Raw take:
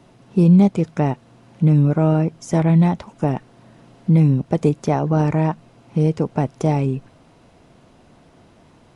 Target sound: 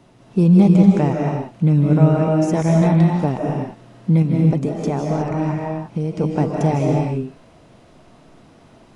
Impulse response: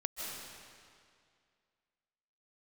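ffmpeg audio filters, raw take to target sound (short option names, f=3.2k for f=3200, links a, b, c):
-filter_complex "[0:a]asettb=1/sr,asplit=3[a][b][c];[a]atrim=end=4.224[d];[b]atrim=start=4.22:end=6.21,asetpts=PTS-STARTPTS,afade=t=in:d=0.004:c=qsin,afade=t=out:st=1.986:d=0.004:c=qsin,acompressor=threshold=-20dB:ratio=3[e];[c]atrim=start=6.206[f];[d][e]acrossfade=d=0.004:c1=hsin:c2=qsin[g];[g][f]acrossfade=d=0.004:c1=qsin:c2=hsin[h];[1:a]atrim=start_sample=2205,afade=t=out:st=0.42:d=0.01,atrim=end_sample=18963[i];[h][i]afir=irnorm=-1:irlink=0,volume=1dB"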